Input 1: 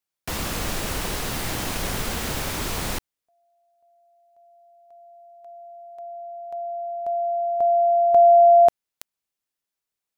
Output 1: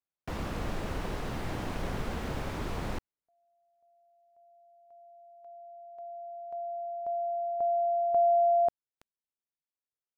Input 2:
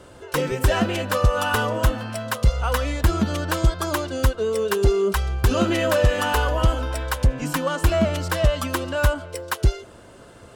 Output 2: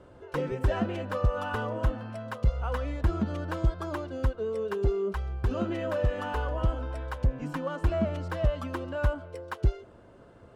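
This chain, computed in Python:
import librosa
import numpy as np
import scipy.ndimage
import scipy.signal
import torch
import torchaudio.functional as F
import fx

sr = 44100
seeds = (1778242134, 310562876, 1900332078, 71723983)

y = fx.lowpass(x, sr, hz=1100.0, slope=6)
y = fx.rider(y, sr, range_db=3, speed_s=2.0)
y = F.gain(torch.from_numpy(y), -7.5).numpy()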